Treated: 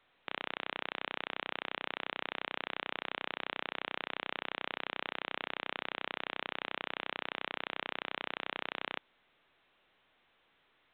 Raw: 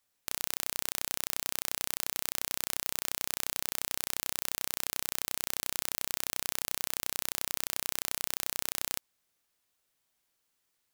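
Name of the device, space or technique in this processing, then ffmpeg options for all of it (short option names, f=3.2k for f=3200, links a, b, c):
telephone: -af "highpass=260,lowpass=3.1k,volume=4dB" -ar 8000 -c:a pcm_alaw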